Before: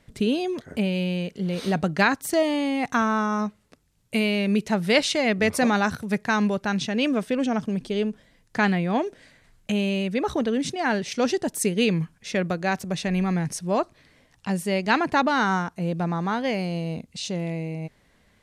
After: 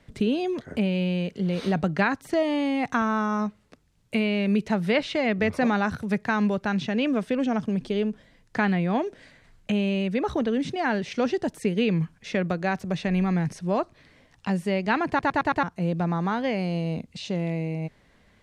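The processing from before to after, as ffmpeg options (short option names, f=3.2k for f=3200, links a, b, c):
-filter_complex "[0:a]asplit=6[a][b][c][d][e][f];[a]atrim=end=15.192[g];[b]atrim=start=15.078:end=15.192[h];[c]atrim=start=15.078:end=15.192[i];[d]atrim=start=15.078:end=15.192[j];[e]atrim=start=15.078:end=15.192[k];[f]atrim=start=15.628[l];[g][h]acrossfade=d=0.004:c1=hsin:c2=hsin[m];[m][i]acrossfade=d=0.004:c1=hsin:c2=hsin[n];[n][j]acrossfade=d=0.004:c1=hsin:c2=hsin[o];[o][k]acrossfade=d=0.004:c1=hsin:c2=hsin[p];[p][l]acrossfade=d=0.004:c1=hsin:c2=hsin,acrossover=split=3400[q][r];[r]acompressor=threshold=-41dB:ratio=4:attack=1:release=60[s];[q][s]amix=inputs=2:normalize=0,highshelf=f=8.1k:g=-11,acrossover=split=150[t][u];[u]acompressor=threshold=-29dB:ratio=1.5[v];[t][v]amix=inputs=2:normalize=0,volume=2dB"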